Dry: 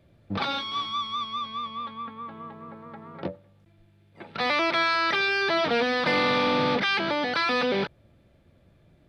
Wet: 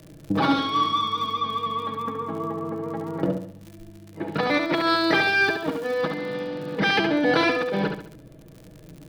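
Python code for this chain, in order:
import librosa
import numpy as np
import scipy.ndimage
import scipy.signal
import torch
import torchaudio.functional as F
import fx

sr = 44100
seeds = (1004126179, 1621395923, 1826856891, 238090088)

y = fx.peak_eq(x, sr, hz=3300.0, db=-11.0, octaves=3.0)
y = y + 0.8 * np.pad(y, (int(6.3 * sr / 1000.0), 0))[:len(y)]
y = fx.over_compress(y, sr, threshold_db=-30.0, ratio=-0.5)
y = fx.small_body(y, sr, hz=(280.0, 410.0, 1700.0, 2900.0), ring_ms=45, db=7)
y = fx.dmg_crackle(y, sr, seeds[0], per_s=fx.steps((0.0, 54.0), (4.75, 320.0), (5.94, 45.0)), level_db=-40.0)
y = fx.echo_feedback(y, sr, ms=70, feedback_pct=38, wet_db=-6.0)
y = y * 10.0 ** (6.0 / 20.0)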